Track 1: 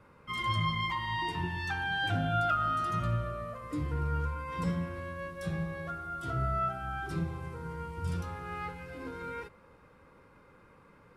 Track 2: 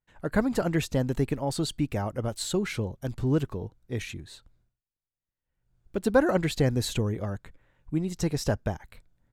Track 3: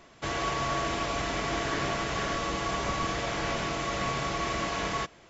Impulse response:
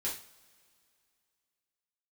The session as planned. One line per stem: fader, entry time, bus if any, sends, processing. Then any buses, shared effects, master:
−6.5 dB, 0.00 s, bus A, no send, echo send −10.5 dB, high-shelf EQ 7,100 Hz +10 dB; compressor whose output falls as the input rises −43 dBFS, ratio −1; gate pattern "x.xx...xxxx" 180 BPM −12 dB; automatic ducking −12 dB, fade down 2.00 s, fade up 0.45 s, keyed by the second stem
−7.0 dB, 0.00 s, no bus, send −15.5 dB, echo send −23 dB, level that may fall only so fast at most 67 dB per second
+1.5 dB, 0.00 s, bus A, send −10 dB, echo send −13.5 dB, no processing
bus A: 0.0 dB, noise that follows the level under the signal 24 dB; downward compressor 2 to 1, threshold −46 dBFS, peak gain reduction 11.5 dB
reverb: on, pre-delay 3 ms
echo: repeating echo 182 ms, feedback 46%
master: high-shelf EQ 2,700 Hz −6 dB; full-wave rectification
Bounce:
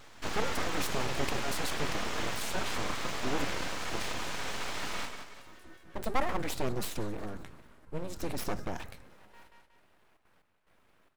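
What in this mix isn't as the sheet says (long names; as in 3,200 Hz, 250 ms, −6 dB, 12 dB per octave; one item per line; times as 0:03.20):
stem 1: missing compressor whose output falls as the input rises −43 dBFS, ratio −1
master: missing high-shelf EQ 2,700 Hz −6 dB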